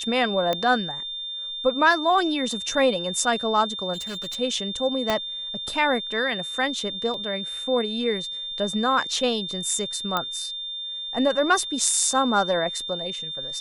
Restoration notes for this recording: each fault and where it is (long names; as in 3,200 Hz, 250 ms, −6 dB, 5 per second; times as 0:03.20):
whistle 3,600 Hz −30 dBFS
0:00.53: click −11 dBFS
0:03.93–0:04.36: clipping −29.5 dBFS
0:05.10: click −8 dBFS
0:07.14: drop-out 2.4 ms
0:10.17: click −10 dBFS